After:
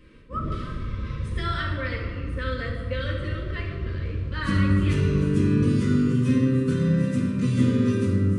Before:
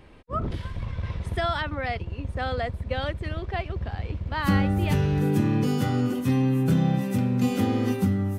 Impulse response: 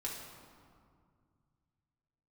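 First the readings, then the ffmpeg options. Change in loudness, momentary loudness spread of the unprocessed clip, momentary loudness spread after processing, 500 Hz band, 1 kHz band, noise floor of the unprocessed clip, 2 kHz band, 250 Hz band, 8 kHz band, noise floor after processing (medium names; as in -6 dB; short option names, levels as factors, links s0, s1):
+1.5 dB, 10 LU, 10 LU, 0.0 dB, -5.0 dB, -41 dBFS, +0.5 dB, +2.0 dB, no reading, -33 dBFS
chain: -filter_complex "[1:a]atrim=start_sample=2205[s0];[0:a][s0]afir=irnorm=-1:irlink=0,aresample=22050,aresample=44100,asuperstop=centerf=780:order=4:qfactor=1.5"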